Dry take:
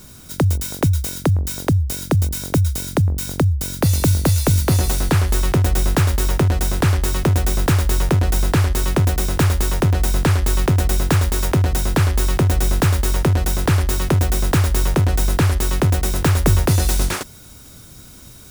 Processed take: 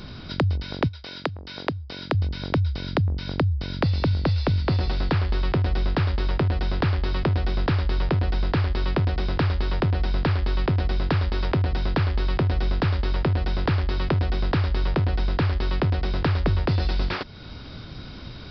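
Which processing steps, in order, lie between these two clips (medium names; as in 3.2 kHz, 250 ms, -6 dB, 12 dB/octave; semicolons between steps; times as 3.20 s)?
resampled via 11.025 kHz; compression 2:1, threshold -35 dBFS, peak gain reduction 13.5 dB; 0.87–2.13 s: high-pass 630 Hz -> 250 Hz 6 dB/octave; trim +5.5 dB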